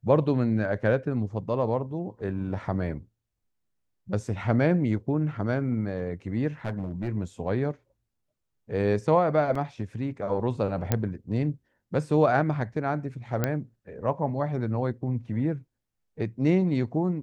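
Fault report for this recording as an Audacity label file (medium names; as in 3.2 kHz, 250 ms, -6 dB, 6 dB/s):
6.650000	7.080000	clipped -25.5 dBFS
9.550000	9.550000	dropout 4.1 ms
10.920000	10.920000	pop -9 dBFS
13.440000	13.440000	pop -11 dBFS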